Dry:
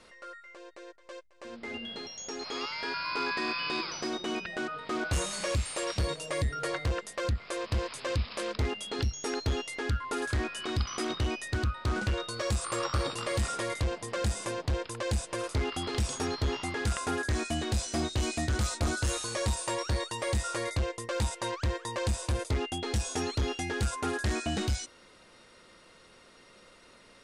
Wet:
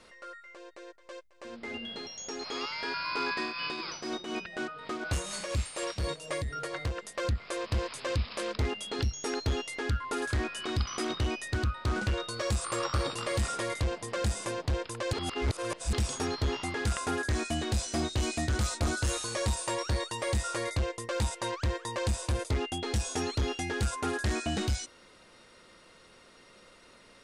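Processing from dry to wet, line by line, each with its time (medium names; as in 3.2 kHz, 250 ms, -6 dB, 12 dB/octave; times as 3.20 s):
3.34–7.15 s: tremolo triangle 4.1 Hz, depth 55%
15.13–15.93 s: reverse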